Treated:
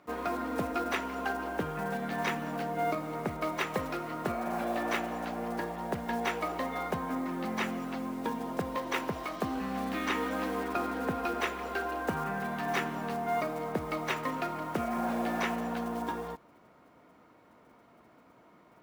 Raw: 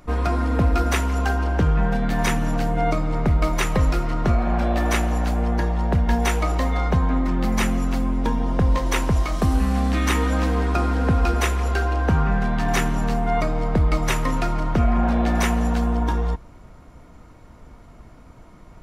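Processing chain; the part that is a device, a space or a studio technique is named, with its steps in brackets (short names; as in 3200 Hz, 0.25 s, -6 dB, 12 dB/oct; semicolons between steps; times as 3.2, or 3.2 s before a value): early digital voice recorder (BPF 260–3800 Hz; block floating point 5-bit); gain -7 dB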